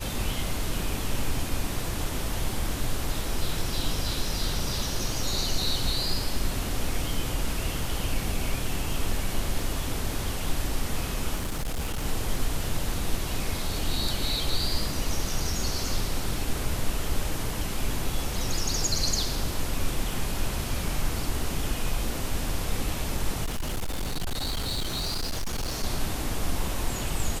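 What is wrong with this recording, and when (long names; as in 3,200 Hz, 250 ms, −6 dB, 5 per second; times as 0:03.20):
0:11.36–0:12.04: clipping −25.5 dBFS
0:23.44–0:25.84: clipping −25.5 dBFS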